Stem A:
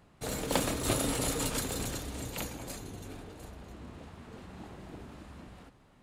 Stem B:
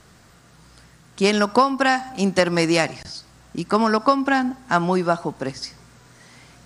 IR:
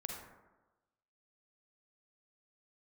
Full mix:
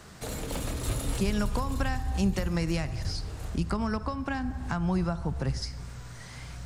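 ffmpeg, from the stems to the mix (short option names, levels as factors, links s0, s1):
-filter_complex "[0:a]asoftclip=type=tanh:threshold=0.0668,volume=1.41[s0];[1:a]alimiter=limit=0.355:level=0:latency=1:release=228,volume=1.06,asplit=2[s1][s2];[s2]volume=0.237[s3];[2:a]atrim=start_sample=2205[s4];[s3][s4]afir=irnorm=-1:irlink=0[s5];[s0][s1][s5]amix=inputs=3:normalize=0,asubboost=boost=6.5:cutoff=100,acrossover=split=180[s6][s7];[s7]acompressor=threshold=0.0158:ratio=3[s8];[s6][s8]amix=inputs=2:normalize=0"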